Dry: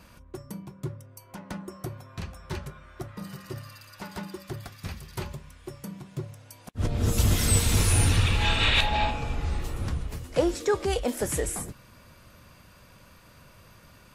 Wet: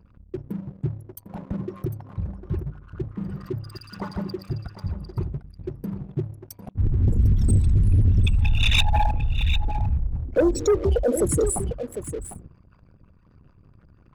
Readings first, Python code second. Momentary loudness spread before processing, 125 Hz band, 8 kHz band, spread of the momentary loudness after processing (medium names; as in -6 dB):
21 LU, +5.5 dB, -3.5 dB, 16 LU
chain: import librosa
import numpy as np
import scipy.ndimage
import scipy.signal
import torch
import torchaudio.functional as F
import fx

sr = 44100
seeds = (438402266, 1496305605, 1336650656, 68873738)

y = fx.envelope_sharpen(x, sr, power=3.0)
y = y + 10.0 ** (-11.0 / 20.0) * np.pad(y, (int(751 * sr / 1000.0), 0))[:len(y)]
y = fx.leveller(y, sr, passes=2)